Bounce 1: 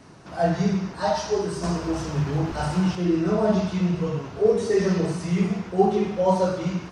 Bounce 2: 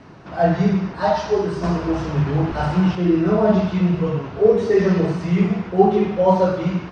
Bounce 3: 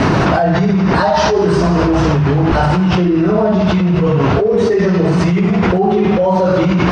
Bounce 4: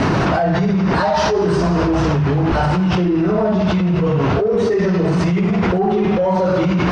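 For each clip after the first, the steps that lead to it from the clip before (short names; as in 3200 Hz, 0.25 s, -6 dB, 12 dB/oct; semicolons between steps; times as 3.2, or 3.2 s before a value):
LPF 3400 Hz 12 dB/oct; gain +5 dB
fast leveller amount 100%; gain -3.5 dB
soft clip -4.5 dBFS, distortion -23 dB; gain -2.5 dB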